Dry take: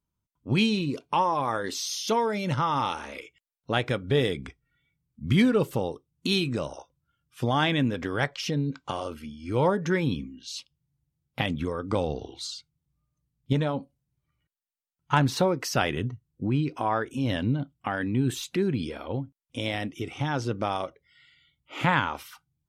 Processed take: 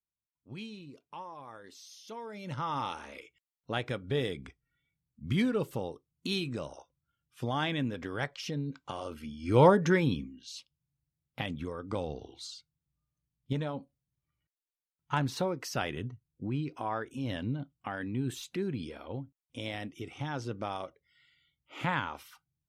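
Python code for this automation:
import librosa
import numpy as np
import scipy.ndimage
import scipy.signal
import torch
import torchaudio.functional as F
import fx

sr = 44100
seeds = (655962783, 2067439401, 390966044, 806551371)

y = fx.gain(x, sr, db=fx.line((2.09, -20.0), (2.7, -7.5), (8.94, -7.5), (9.63, 3.5), (10.58, -8.0)))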